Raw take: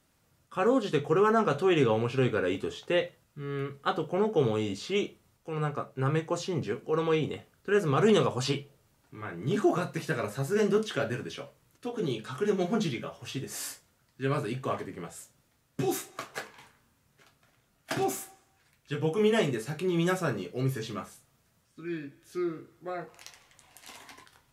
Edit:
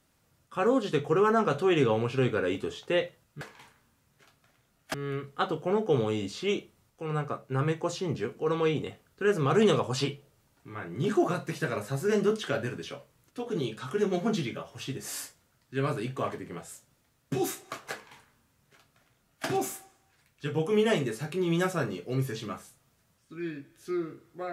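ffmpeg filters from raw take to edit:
-filter_complex "[0:a]asplit=3[s0][s1][s2];[s0]atrim=end=3.412[s3];[s1]atrim=start=16.398:end=17.932[s4];[s2]atrim=start=3.408[s5];[s3][s4]acrossfade=d=0.004:c1=hsin:c2=hsin[s6];[s6][s5]acrossfade=d=0.004:c1=hsin:c2=hsin"

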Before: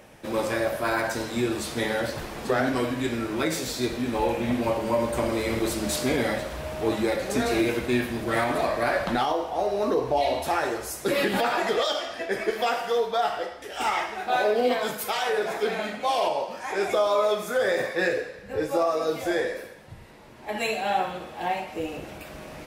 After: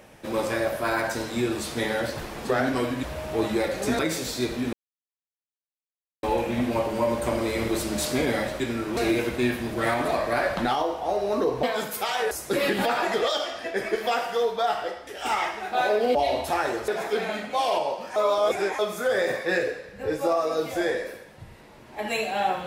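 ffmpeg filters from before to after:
-filter_complex "[0:a]asplit=12[s0][s1][s2][s3][s4][s5][s6][s7][s8][s9][s10][s11];[s0]atrim=end=3.032[s12];[s1]atrim=start=6.508:end=7.472[s13];[s2]atrim=start=3.398:end=4.14,asetpts=PTS-STARTPTS,afade=t=out:st=0.738:d=0.004:c=hsin,apad=pad_dur=1.5[s14];[s3]atrim=start=4.14:end=6.512,asetpts=PTS-STARTPTS,afade=t=in:d=0.004:c=hsin[s15];[s4]atrim=start=3.028:end=3.402[s16];[s5]atrim=start=7.468:end=10.132[s17];[s6]atrim=start=14.698:end=15.382[s18];[s7]atrim=start=10.858:end=14.702[s19];[s8]atrim=start=10.128:end=10.862[s20];[s9]atrim=start=15.378:end=16.662[s21];[s10]atrim=start=16.658:end=17.292,asetpts=PTS-STARTPTS,areverse[s22];[s11]atrim=start=17.288[s23];[s12][s13]acrossfade=d=0.004:c1=hsin:c2=hsin[s24];[s14][s15]concat=n=2:v=0:a=1[s25];[s24][s25]acrossfade=d=0.004:c1=hsin:c2=hsin[s26];[s26][s16]acrossfade=d=0.004:c1=hsin:c2=hsin[s27];[s27][s17]acrossfade=d=0.004:c1=hsin:c2=hsin[s28];[s28][s18]acrossfade=d=0.004:c1=hsin:c2=hsin[s29];[s29][s19]acrossfade=d=0.004:c1=hsin:c2=hsin[s30];[s30][s20]acrossfade=d=0.004:c1=hsin:c2=hsin[s31];[s31][s21]acrossfade=d=0.004:c1=hsin:c2=hsin[s32];[s32][s22]acrossfade=d=0.004:c1=hsin:c2=hsin[s33];[s33][s23]acrossfade=d=0.004:c1=hsin:c2=hsin"

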